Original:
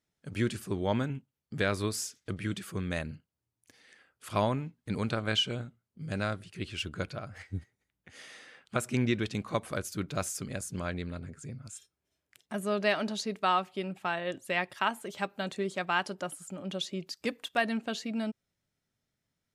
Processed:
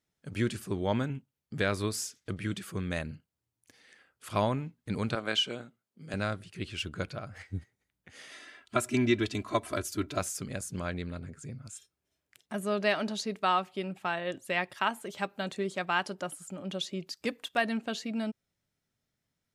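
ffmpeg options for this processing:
-filter_complex "[0:a]asettb=1/sr,asplit=3[s0][s1][s2];[s0]atrim=end=5.154[s3];[s1]atrim=start=5.15:end=6.14,asetpts=PTS-STARTPTS,afade=t=in:d=0.004:c=qsin,afade=t=out:st=0.986:d=0.004:c=qsin,highpass=240[s4];[s2]atrim=start=6.136[s5];[s3][s4]acrossfade=d=0.004:c1=hsin:c2=qsin[s6];[s6][s5]acrossfade=d=0.004:c1=qsin:c2=hsin,asettb=1/sr,asplit=3[s7][s8][s9];[s7]atrim=end=8.314[s10];[s8]atrim=start=8.31:end=10.19,asetpts=PTS-STARTPTS,afade=t=in:d=0.004:c=qsin,afade=t=out:st=1.876:d=0.004:c=qsin,aecho=1:1:3:0.86,atrim=end_sample=82908[s11];[s9]atrim=start=10.186[s12];[s10][s11]acrossfade=d=0.004:c1=hsin:c2=qsin[s13];[s13][s12]acrossfade=d=0.004:c1=qsin:c2=hsin"

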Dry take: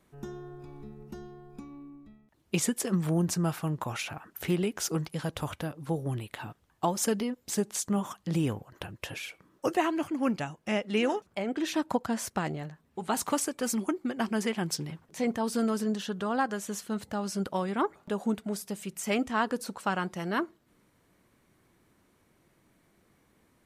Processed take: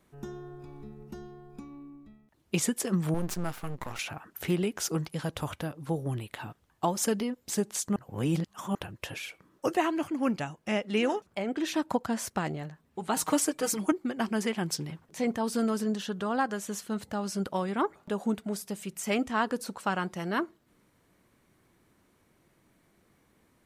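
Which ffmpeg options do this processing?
-filter_complex "[0:a]asettb=1/sr,asplit=3[s0][s1][s2];[s0]atrim=end=3.144[s3];[s1]atrim=start=3.14:end=3.99,asetpts=PTS-STARTPTS,afade=t=in:d=0.004:c=qsin,afade=t=out:st=0.846:d=0.004:c=qsin,aeval=exprs='max(val(0),0)':c=same[s4];[s2]atrim=start=3.986[s5];[s3][s4]acrossfade=d=0.004:c1=hsin:c2=qsin[s6];[s6][s5]acrossfade=d=0.004:c1=qsin:c2=hsin,asettb=1/sr,asplit=3[s7][s8][s9];[s7]atrim=end=13.164[s10];[s8]atrim=start=13.16:end=13.92,asetpts=PTS-STARTPTS,afade=t=in:d=0.004:c=qsin,afade=t=out:st=0.756:d=0.004:c=qsin,aecho=1:1:6.4:0.93,atrim=end_sample=33516[s11];[s9]atrim=start=13.916[s12];[s10][s11]acrossfade=d=0.004:c1=hsin:c2=qsin[s13];[s13][s12]acrossfade=d=0.004:c1=qsin:c2=hsin,asplit=3[s14][s15][s16];[s14]atrim=end=7.962[s17];[s15]atrim=start=7.958:end=8.752,asetpts=PTS-STARTPTS,areverse[s18];[s16]atrim=start=8.748[s19];[s17][s18]acrossfade=d=0.004:c1=hsin:c2=hsin[s20];[s20][s19]acrossfade=d=0.004:c1=hsin:c2=hsin"

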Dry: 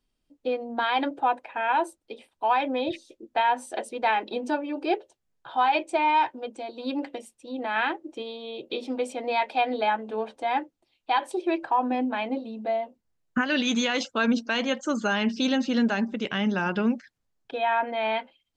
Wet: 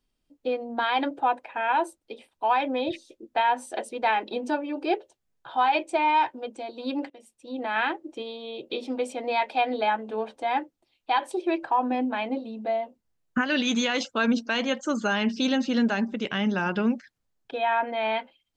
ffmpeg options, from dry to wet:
-filter_complex "[0:a]asplit=2[s0][s1];[s0]atrim=end=7.1,asetpts=PTS-STARTPTS,afade=t=out:st=7.096:d=0.004:c=hsin:silence=0.0841395[s2];[s1]atrim=start=7.1,asetpts=PTS-STARTPTS,afade=t=in:d=0.43:silence=0.0841395[s3];[s2][s3]concat=n=2:v=0:a=1"

